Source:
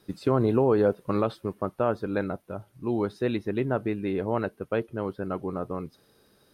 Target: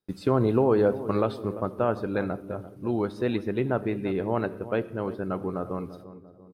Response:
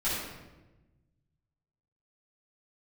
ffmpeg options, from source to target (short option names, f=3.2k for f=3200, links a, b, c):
-filter_complex "[0:a]agate=range=-27dB:threshold=-53dB:ratio=16:detection=peak,asplit=2[a][b];[b]adelay=343,lowpass=f=950:p=1,volume=-13dB,asplit=2[c][d];[d]adelay=343,lowpass=f=950:p=1,volume=0.51,asplit=2[e][f];[f]adelay=343,lowpass=f=950:p=1,volume=0.51,asplit=2[g][h];[h]adelay=343,lowpass=f=950:p=1,volume=0.51,asplit=2[i][j];[j]adelay=343,lowpass=f=950:p=1,volume=0.51[k];[a][c][e][g][i][k]amix=inputs=6:normalize=0,asplit=2[l][m];[1:a]atrim=start_sample=2205,afade=t=out:st=0.26:d=0.01,atrim=end_sample=11907[n];[m][n]afir=irnorm=-1:irlink=0,volume=-23.5dB[o];[l][o]amix=inputs=2:normalize=0"